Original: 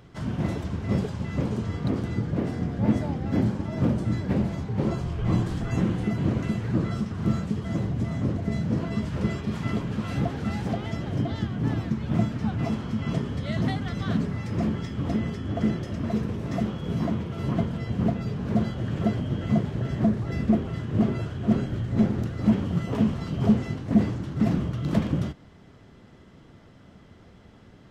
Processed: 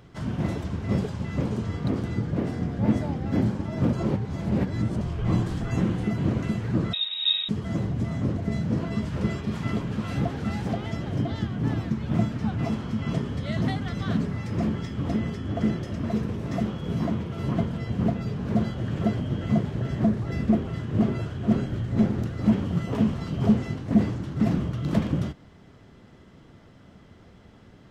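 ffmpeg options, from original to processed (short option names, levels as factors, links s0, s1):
-filter_complex "[0:a]asettb=1/sr,asplit=3[s0][s1][s2];[s0]atrim=end=6.934[s3];[s1]atrim=start=6.93:end=7.49,asetpts=PTS-STARTPTS,afade=t=in:d=0.004:c=qsin,afade=t=out:st=0.556:d=0.004:c=qsin,lowpass=f=3300:t=q:w=0.5098,lowpass=f=3300:t=q:w=0.6013,lowpass=f=3300:t=q:w=0.9,lowpass=f=3300:t=q:w=2.563,afreqshift=-3900[s4];[s2]atrim=start=7.486[s5];[s3][s4]acrossfade=d=0.004:c1=hsin:c2=qsin[s6];[s6][s5]acrossfade=d=0.004:c1=qsin:c2=hsin,asplit=3[s7][s8][s9];[s7]atrim=end=3.932[s10];[s8]atrim=start=3.928:end=5.012,asetpts=PTS-STARTPTS,areverse[s11];[s9]atrim=start=5.008[s12];[s10][s11]acrossfade=d=0.004:c1=hsin:c2=hsin[s13];[s13][s12]acrossfade=d=0.004:c1=hsin:c2=hsin"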